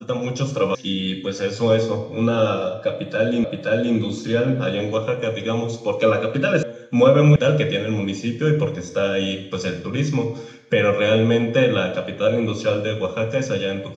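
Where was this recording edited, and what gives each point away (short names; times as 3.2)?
0.75 sound cut off
3.44 repeat of the last 0.52 s
6.63 sound cut off
7.36 sound cut off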